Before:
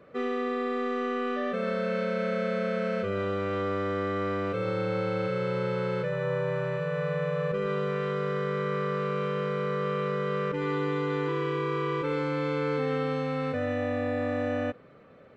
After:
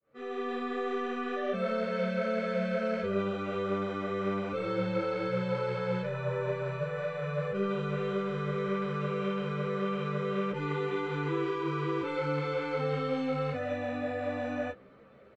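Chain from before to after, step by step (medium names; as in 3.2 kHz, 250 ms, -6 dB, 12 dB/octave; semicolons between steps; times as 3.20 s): fade-in on the opening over 0.51 s; doubling 15 ms -7 dB; three-phase chorus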